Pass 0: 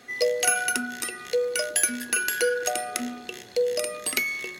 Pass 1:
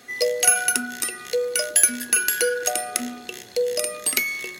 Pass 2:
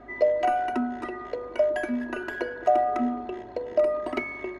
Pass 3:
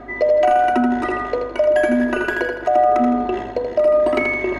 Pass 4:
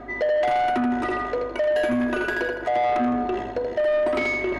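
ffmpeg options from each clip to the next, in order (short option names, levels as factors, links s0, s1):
-af "highshelf=f=6200:g=7.5,volume=1.12"
-af "lowpass=f=890:t=q:w=1.5,aecho=1:1:3.1:0.86,aeval=exprs='val(0)+0.00126*(sin(2*PI*50*n/s)+sin(2*PI*2*50*n/s)/2+sin(2*PI*3*50*n/s)/3+sin(2*PI*4*50*n/s)/4+sin(2*PI*5*50*n/s)/5)':c=same,volume=1.26"
-af "areverse,acompressor=mode=upward:threshold=0.0631:ratio=2.5,areverse,alimiter=limit=0.141:level=0:latency=1:release=232,aecho=1:1:81|162|243|324|405:0.501|0.21|0.0884|0.0371|0.0156,volume=2.66"
-af "asoftclip=type=tanh:threshold=0.158,volume=0.794"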